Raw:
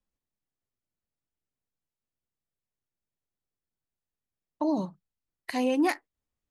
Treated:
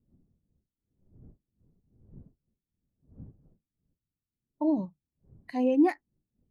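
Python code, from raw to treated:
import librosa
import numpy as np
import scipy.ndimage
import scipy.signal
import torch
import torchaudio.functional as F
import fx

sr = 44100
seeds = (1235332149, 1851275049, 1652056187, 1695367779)

y = fx.dmg_wind(x, sr, seeds[0], corner_hz=210.0, level_db=-50.0)
y = fx.spectral_expand(y, sr, expansion=1.5)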